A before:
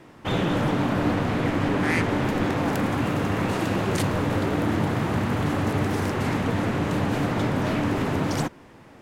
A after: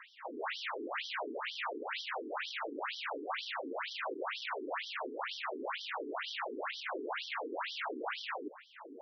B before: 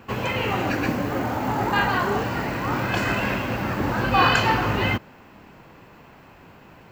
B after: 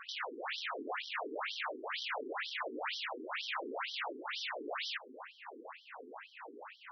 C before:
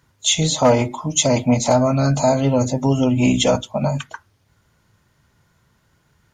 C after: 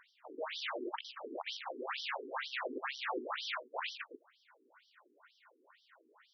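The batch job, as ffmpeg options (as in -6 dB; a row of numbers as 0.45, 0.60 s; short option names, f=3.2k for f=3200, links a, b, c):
-filter_complex "[0:a]acompressor=threshold=-31dB:ratio=2,aeval=exprs='(mod(25.1*val(0)+1,2)-1)/25.1':c=same,asplit=2[a][b];[b]highpass=f=720:p=1,volume=13dB,asoftclip=type=tanh:threshold=-27.5dB[c];[a][c]amix=inputs=2:normalize=0,lowpass=f=2k:p=1,volume=-6dB,afftfilt=real='re*between(b*sr/1024,310*pow(4300/310,0.5+0.5*sin(2*PI*2.1*pts/sr))/1.41,310*pow(4300/310,0.5+0.5*sin(2*PI*2.1*pts/sr))*1.41)':imag='im*between(b*sr/1024,310*pow(4300/310,0.5+0.5*sin(2*PI*2.1*pts/sr))/1.41,310*pow(4300/310,0.5+0.5*sin(2*PI*2.1*pts/sr))*1.41)':win_size=1024:overlap=0.75,volume=2dB"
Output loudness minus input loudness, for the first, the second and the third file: -14.5, -16.5, -22.5 LU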